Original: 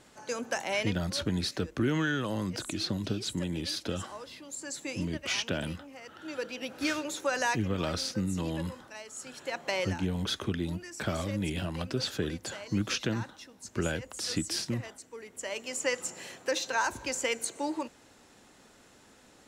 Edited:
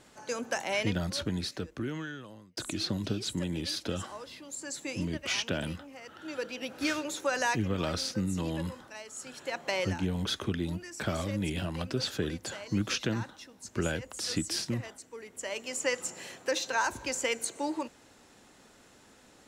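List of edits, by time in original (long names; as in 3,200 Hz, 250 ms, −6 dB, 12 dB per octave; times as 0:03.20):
0:00.96–0:02.57: fade out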